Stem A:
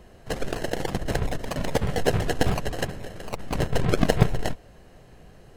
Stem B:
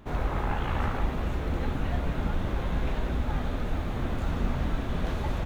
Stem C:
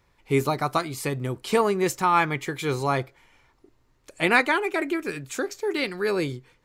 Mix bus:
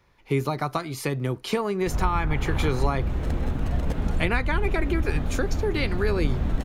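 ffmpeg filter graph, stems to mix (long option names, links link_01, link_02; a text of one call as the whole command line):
ffmpeg -i stem1.wav -i stem2.wav -i stem3.wav -filter_complex "[0:a]adelay=2150,volume=-12.5dB[link_01];[1:a]lowshelf=frequency=420:gain=8,adelay=1800,volume=-4dB[link_02];[2:a]highshelf=frequency=7800:gain=-5,bandreject=frequency=7800:width=5.6,volume=2.5dB,asplit=2[link_03][link_04];[link_04]apad=whole_len=340152[link_05];[link_01][link_05]sidechaincompress=threshold=-44dB:ratio=8:attack=5.1:release=122[link_06];[link_06][link_02][link_03]amix=inputs=3:normalize=0,acrossover=split=170[link_07][link_08];[link_08]acompressor=threshold=-23dB:ratio=6[link_09];[link_07][link_09]amix=inputs=2:normalize=0" out.wav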